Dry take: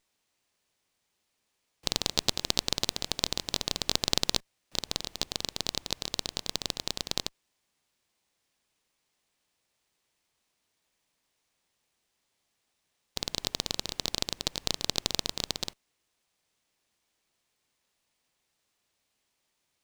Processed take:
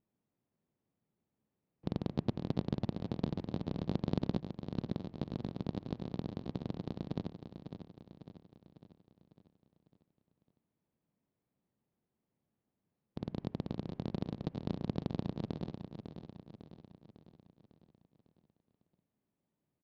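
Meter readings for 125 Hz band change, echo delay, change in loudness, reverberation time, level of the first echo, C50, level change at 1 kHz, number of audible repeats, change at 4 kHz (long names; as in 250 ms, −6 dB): +6.5 dB, 551 ms, −9.0 dB, no reverb audible, −9.0 dB, no reverb audible, −8.5 dB, 5, −26.0 dB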